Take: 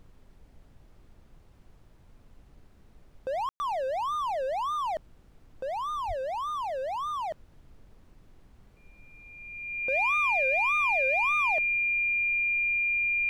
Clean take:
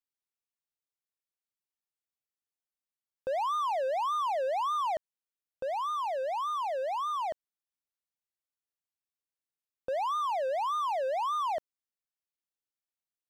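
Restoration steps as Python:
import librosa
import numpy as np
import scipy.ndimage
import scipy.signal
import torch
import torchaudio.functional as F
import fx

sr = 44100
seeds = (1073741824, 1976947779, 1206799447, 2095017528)

y = fx.notch(x, sr, hz=2400.0, q=30.0)
y = fx.highpass(y, sr, hz=140.0, slope=24, at=(6.07, 6.19), fade=0.02)
y = fx.fix_ambience(y, sr, seeds[0], print_start_s=1.52, print_end_s=2.02, start_s=3.49, end_s=3.6)
y = fx.noise_reduce(y, sr, print_start_s=1.52, print_end_s=2.02, reduce_db=30.0)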